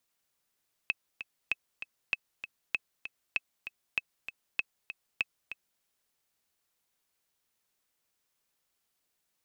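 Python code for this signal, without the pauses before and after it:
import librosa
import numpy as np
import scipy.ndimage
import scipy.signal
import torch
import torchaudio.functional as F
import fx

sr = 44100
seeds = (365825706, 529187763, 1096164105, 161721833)

y = fx.click_track(sr, bpm=195, beats=2, bars=8, hz=2590.0, accent_db=11.0, level_db=-14.5)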